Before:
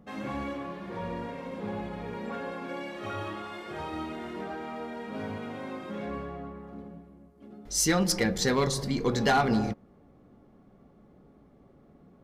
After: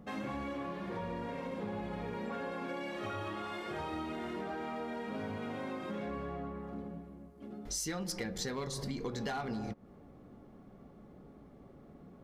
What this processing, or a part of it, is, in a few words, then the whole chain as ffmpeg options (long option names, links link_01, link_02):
serial compression, peaks first: -af "acompressor=threshold=-34dB:ratio=5,acompressor=threshold=-43dB:ratio=1.5,volume=2dB"